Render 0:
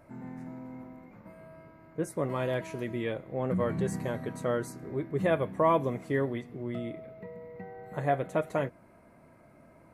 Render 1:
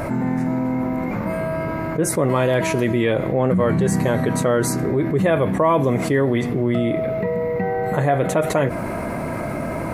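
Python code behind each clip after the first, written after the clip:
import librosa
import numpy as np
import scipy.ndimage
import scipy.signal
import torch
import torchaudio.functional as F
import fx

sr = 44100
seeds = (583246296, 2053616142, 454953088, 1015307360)

y = fx.env_flatten(x, sr, amount_pct=70)
y = y * librosa.db_to_amplitude(6.5)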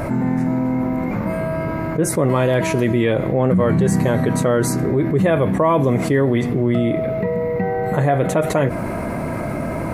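y = fx.low_shelf(x, sr, hz=340.0, db=3.5)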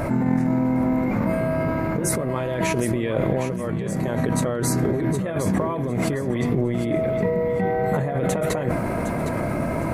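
y = fx.over_compress(x, sr, threshold_db=-19.0, ratio=-0.5)
y = fx.echo_feedback(y, sr, ms=760, feedback_pct=26, wet_db=-10.5)
y = fx.sustainer(y, sr, db_per_s=31.0)
y = y * librosa.db_to_amplitude(-3.5)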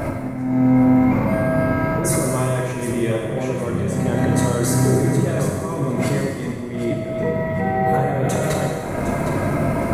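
y = fx.auto_swell(x, sr, attack_ms=346.0)
y = fx.rev_plate(y, sr, seeds[0], rt60_s=1.7, hf_ratio=1.0, predelay_ms=0, drr_db=-1.5)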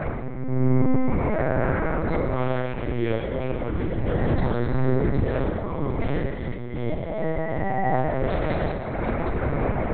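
y = fx.lpc_vocoder(x, sr, seeds[1], excitation='pitch_kept', order=8)
y = y * librosa.db_to_amplitude(-3.5)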